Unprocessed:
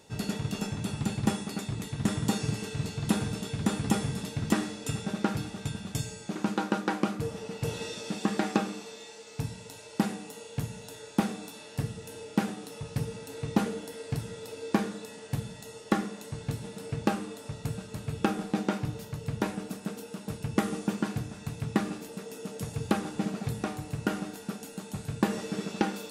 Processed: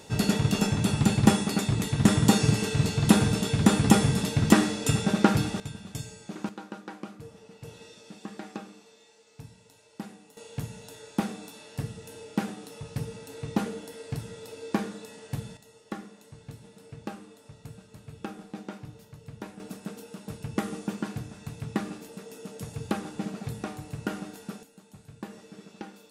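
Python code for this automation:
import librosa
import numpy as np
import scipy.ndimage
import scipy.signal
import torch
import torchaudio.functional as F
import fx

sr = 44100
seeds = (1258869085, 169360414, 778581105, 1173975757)

y = fx.gain(x, sr, db=fx.steps((0.0, 8.0), (5.6, -4.0), (6.49, -12.0), (10.37, -1.5), (15.57, -10.5), (19.6, -2.5), (24.63, -13.5)))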